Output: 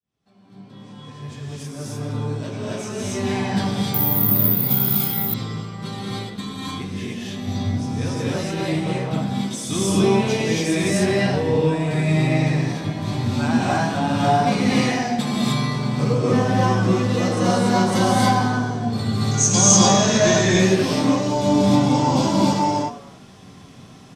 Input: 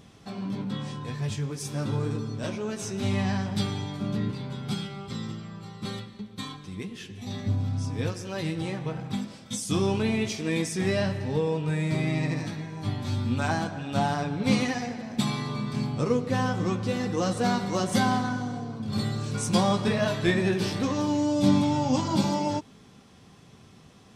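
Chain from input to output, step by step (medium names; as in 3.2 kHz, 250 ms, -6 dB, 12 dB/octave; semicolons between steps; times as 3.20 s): fade-in on the opening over 4.02 s; in parallel at -8 dB: saturation -24.5 dBFS, distortion -10 dB; 19.31–20.45 s: on the sum: resonant low-pass 6.5 kHz, resonance Q 14; on a send: frequency-shifting echo 99 ms, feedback 46%, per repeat +130 Hz, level -17 dB; on the sum: gated-style reverb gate 320 ms rising, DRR -6 dB; 3.94–5.34 s: careless resampling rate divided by 3×, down none, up zero stuff; trim -1.5 dB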